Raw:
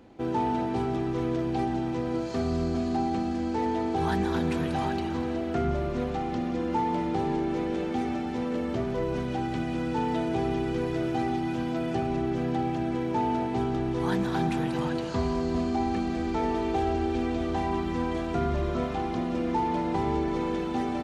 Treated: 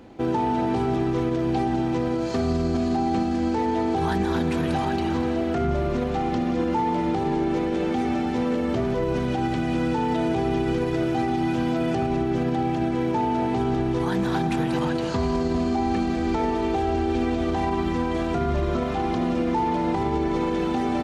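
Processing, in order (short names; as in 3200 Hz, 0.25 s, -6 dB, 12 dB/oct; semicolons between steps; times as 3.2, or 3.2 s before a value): limiter -22 dBFS, peak gain reduction 6.5 dB; gain +6.5 dB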